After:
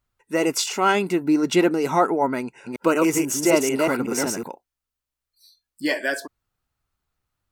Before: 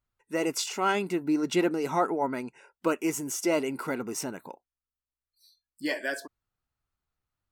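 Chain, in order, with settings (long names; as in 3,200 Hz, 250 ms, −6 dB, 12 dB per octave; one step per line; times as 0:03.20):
0:02.39–0:04.48: delay that plays each chunk backwards 186 ms, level −2 dB
level +7 dB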